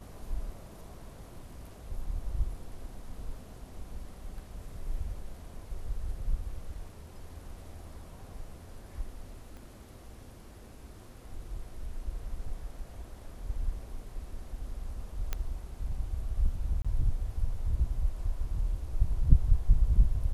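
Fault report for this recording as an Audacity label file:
9.570000	9.570000	click −35 dBFS
15.330000	15.330000	click −17 dBFS
16.820000	16.850000	drop-out 26 ms

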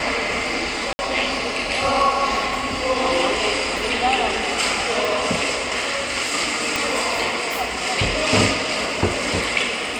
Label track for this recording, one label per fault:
0.930000	0.990000	drop-out 60 ms
5.050000	5.050000	click
6.760000	6.760000	click

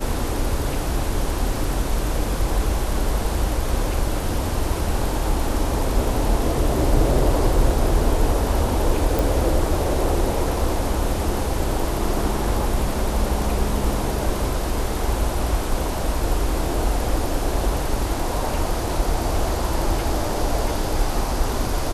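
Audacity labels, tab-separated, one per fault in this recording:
9.190000	9.190000	click

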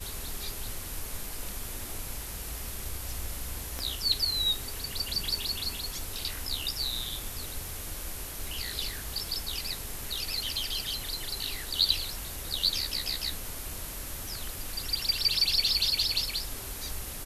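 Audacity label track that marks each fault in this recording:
3.790000	3.790000	click −19 dBFS

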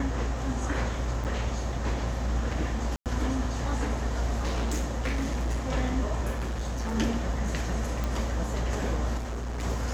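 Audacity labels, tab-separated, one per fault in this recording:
1.240000	1.250000	drop-out 8.3 ms
2.960000	3.060000	drop-out 98 ms
4.360000	5.660000	clipping −24.5 dBFS
6.340000	6.960000	clipping −27.5 dBFS
8.040000	8.040000	click −17 dBFS
9.170000	9.640000	clipping −30 dBFS

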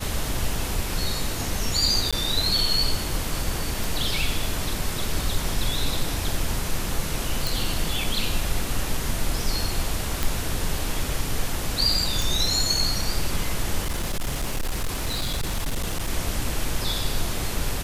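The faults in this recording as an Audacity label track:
2.110000	2.130000	drop-out 16 ms
3.840000	3.840000	click
7.470000	7.470000	click
10.230000	10.230000	click
12.220000	12.220000	click
13.800000	16.100000	clipping −21.5 dBFS

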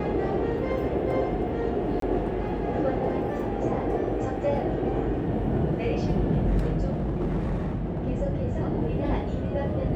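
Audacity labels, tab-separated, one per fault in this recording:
2.000000	2.020000	drop-out 23 ms
6.890000	8.100000	clipping −23.5 dBFS

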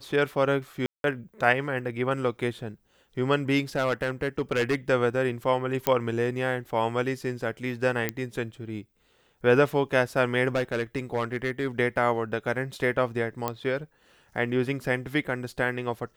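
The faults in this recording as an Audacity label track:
0.860000	1.040000	drop-out 182 ms
3.750000	4.760000	clipping −19.5 dBFS
5.870000	5.870000	click −7 dBFS
8.090000	8.090000	click −11 dBFS
10.480000	11.670000	clipping −20.5 dBFS
13.480000	13.480000	click −13 dBFS

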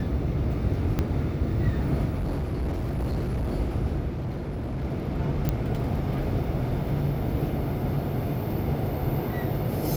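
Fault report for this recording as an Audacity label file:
0.990000	0.990000	click −13 dBFS
2.180000	3.530000	clipping −24.5 dBFS
4.100000	4.850000	clipping −27 dBFS
5.490000	5.490000	click −12 dBFS

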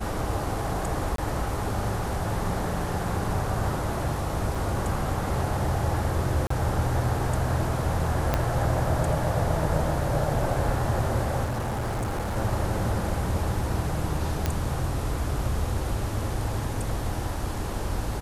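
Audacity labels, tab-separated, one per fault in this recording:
1.160000	1.180000	drop-out 23 ms
4.550000	4.550000	drop-out 4.6 ms
6.470000	6.500000	drop-out 34 ms
8.340000	8.340000	click −9 dBFS
11.440000	12.370000	clipping −25.5 dBFS
14.460000	14.460000	click −10 dBFS

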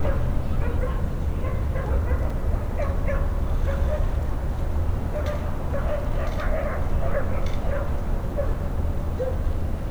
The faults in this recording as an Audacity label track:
2.300000	2.300000	drop-out 4.3 ms

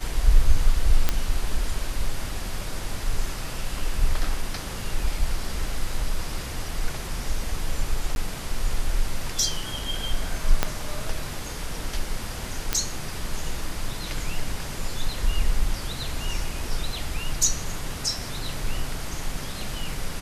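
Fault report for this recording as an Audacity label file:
1.090000	1.090000	click −6 dBFS
8.150000	8.160000	drop-out
10.630000	10.630000	click −5 dBFS
12.730000	12.730000	click −6 dBFS

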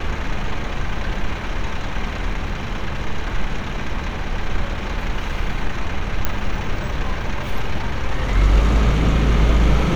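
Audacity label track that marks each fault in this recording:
6.250000	6.250000	click −5 dBFS

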